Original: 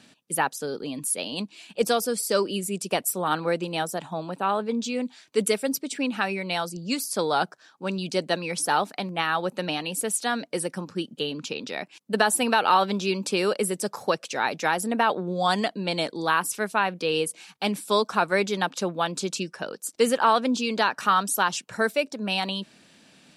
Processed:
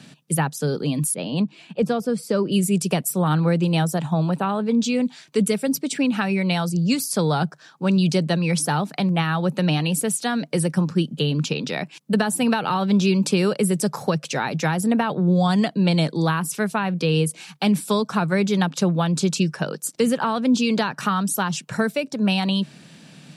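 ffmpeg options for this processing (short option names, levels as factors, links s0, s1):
-filter_complex "[0:a]asettb=1/sr,asplit=3[s0][s1][s2];[s0]atrim=end=1.144[s3];[s1]atrim=start=1.14:end=2.52,asetpts=PTS-STARTPTS,afade=t=in:d=0.004:c=qsin,afade=t=out:st=1.376:d=0.004:c=qsin,lowpass=f=1500:p=1[s4];[s2]atrim=start=2.516[s5];[s3][s4]acrossfade=d=0.004:c1=hsin:c2=qsin[s6];[s6][s5]acrossfade=d=0.004:c1=qsin:c2=hsin,equalizer=f=150:t=o:w=0.63:g=15,acrossover=split=270[s7][s8];[s8]acompressor=threshold=0.0398:ratio=4[s9];[s7][s9]amix=inputs=2:normalize=0,volume=2"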